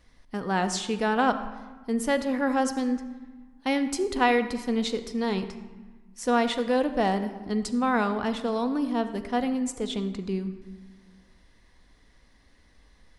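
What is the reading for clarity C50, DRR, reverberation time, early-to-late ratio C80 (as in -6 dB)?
11.0 dB, 8.0 dB, 1.3 s, 12.0 dB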